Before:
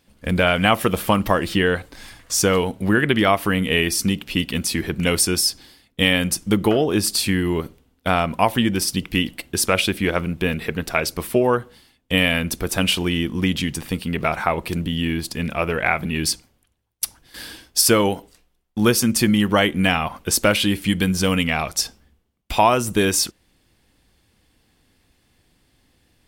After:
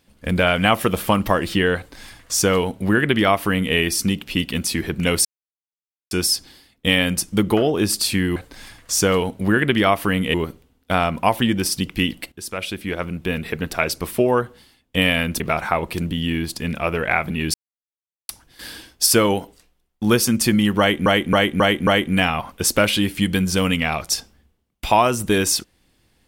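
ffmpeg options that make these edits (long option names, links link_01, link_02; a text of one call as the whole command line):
ffmpeg -i in.wav -filter_complex "[0:a]asplit=12[link_01][link_02][link_03][link_04][link_05][link_06][link_07][link_08][link_09][link_10][link_11][link_12];[link_01]atrim=end=5.25,asetpts=PTS-STARTPTS,afade=type=out:start_time=5.246:duration=0.004:curve=hsin,apad=pad_dur=0.86[link_13];[link_02]atrim=start=5.25:end=7.502,asetpts=PTS-STARTPTS,afade=type=in:duration=0.004:curve=hsin[link_14];[link_03]atrim=start=1.768:end=3.752[link_15];[link_04]atrim=start=7.498:end=9.48,asetpts=PTS-STARTPTS,afade=type=out:start_time=1.978:duration=0.004:curve=hsin:silence=0.177828[link_16];[link_05]atrim=start=9.48:end=12.562,asetpts=PTS-STARTPTS,afade=type=in:duration=1.32:silence=0.177828[link_17];[link_06]atrim=start=14.148:end=16.29,asetpts=PTS-STARTPTS,afade=type=out:start_time=2.138:duration=0.004:curve=hsin[link_18];[link_07]atrim=start=16.29:end=17.04,asetpts=PTS-STARTPTS,volume=0[link_19];[link_08]atrim=start=17.04:end=19.812,asetpts=PTS-STARTPTS,afade=type=in:duration=0.004:curve=hsin[link_20];[link_09]atrim=start=19.538:end=19.812[link_21];[link_10]atrim=start=19.538:end=19.812[link_22];[link_11]atrim=start=19.538:end=19.812[link_23];[link_12]atrim=start=19.538[link_24];[link_13][link_14]concat=n=2:v=0:a=1[link_25];[link_25][link_15]acrossfade=duration=0.004:curve1=hsin:curve2=hsin[link_26];[link_16][link_17]concat=n=2:v=0:a=1[link_27];[link_26][link_27]acrossfade=duration=0.004:curve1=hsin:curve2=hsin[link_28];[link_18][link_19][link_20]concat=n=3:v=0:a=1[link_29];[link_28][link_29]acrossfade=duration=0.004:curve1=hsin:curve2=hsin[link_30];[link_30][link_21]acrossfade=duration=0.004:curve1=hsin:curve2=hsin[link_31];[link_31][link_22]acrossfade=duration=0.004:curve1=hsin:curve2=hsin[link_32];[link_32][link_23]acrossfade=duration=0.004:curve1=hsin:curve2=hsin[link_33];[link_33][link_24]acrossfade=duration=0.004:curve1=hsin:curve2=hsin" out.wav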